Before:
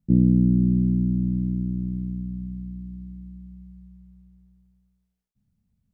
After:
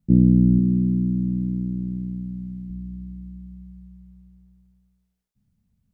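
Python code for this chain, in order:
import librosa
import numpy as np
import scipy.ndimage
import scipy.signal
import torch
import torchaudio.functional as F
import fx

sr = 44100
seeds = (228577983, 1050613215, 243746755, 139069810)

y = fx.highpass(x, sr, hz=130.0, slope=6, at=(0.59, 2.7))
y = F.gain(torch.from_numpy(y), 2.5).numpy()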